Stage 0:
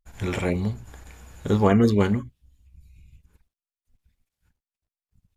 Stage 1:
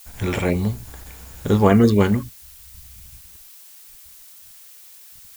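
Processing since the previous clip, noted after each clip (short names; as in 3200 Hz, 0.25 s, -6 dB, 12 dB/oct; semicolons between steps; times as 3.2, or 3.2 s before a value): added noise blue -49 dBFS; gain +4 dB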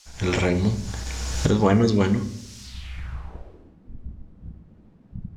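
recorder AGC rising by 16 dB/s; on a send at -10 dB: reverb RT60 0.85 s, pre-delay 6 ms; on the sum: low-pass sweep 5800 Hz -> 210 Hz, 2.61–3.77; gain -4.5 dB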